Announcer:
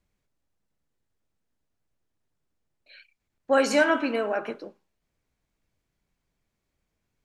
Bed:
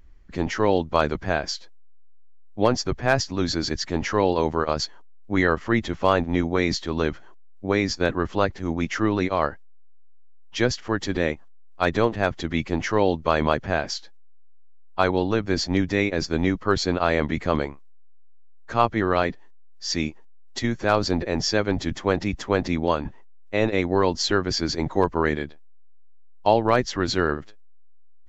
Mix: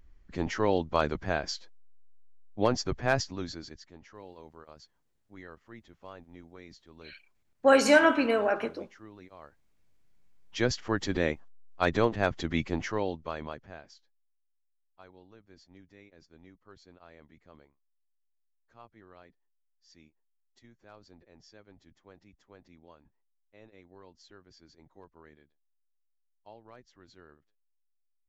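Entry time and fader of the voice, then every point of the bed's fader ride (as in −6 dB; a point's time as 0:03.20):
4.15 s, +1.0 dB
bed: 0:03.18 −6 dB
0:03.99 −27.5 dB
0:09.46 −27.5 dB
0:10.71 −4.5 dB
0:12.63 −4.5 dB
0:14.39 −33 dB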